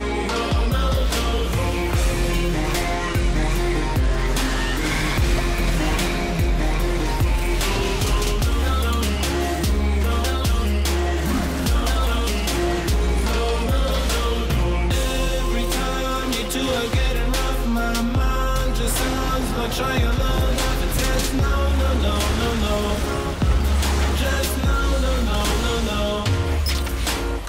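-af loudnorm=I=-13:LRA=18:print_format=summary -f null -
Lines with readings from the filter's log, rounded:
Input Integrated:    -21.8 LUFS
Input True Peak:      -8.4 dBTP
Input LRA:             1.0 LU
Input Threshold:     -31.8 LUFS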